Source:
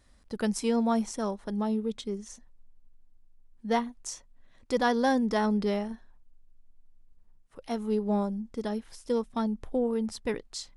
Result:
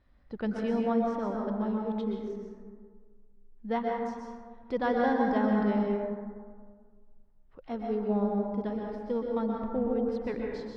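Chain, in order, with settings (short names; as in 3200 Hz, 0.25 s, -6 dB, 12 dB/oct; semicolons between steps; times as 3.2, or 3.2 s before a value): air absorption 330 m; reverb RT60 1.7 s, pre-delay 0.112 s, DRR -1 dB; gain -3 dB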